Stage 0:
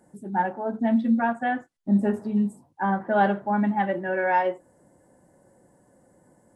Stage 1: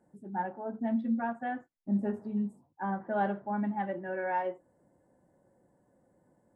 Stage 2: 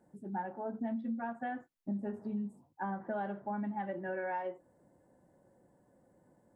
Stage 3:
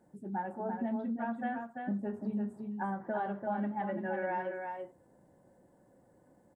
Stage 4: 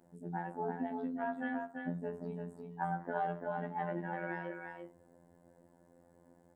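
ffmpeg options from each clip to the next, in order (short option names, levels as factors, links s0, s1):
-af "highshelf=f=2900:g=-10.5,volume=0.376"
-af "acompressor=threshold=0.0178:ratio=6,volume=1.12"
-af "aecho=1:1:340:0.562,volume=1.19"
-af "afftfilt=real='hypot(re,im)*cos(PI*b)':imag='0':win_size=2048:overlap=0.75,volume=1.5"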